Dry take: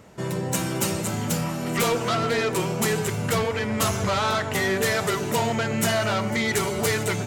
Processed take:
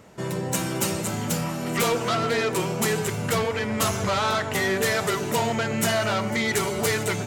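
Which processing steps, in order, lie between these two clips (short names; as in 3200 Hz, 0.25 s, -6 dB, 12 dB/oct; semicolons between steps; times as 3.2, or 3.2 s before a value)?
low shelf 110 Hz -4 dB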